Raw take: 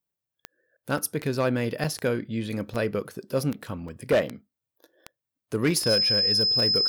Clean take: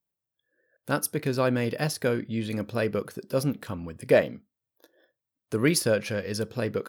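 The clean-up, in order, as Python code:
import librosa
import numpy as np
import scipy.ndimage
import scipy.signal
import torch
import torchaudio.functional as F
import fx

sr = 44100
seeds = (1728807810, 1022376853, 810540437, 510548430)

y = fx.fix_declip(x, sr, threshold_db=-16.0)
y = fx.fix_declick_ar(y, sr, threshold=10.0)
y = fx.notch(y, sr, hz=5100.0, q=30.0)
y = fx.fix_interpolate(y, sr, at_s=(0.98, 1.84, 2.74, 3.88), length_ms=4.4)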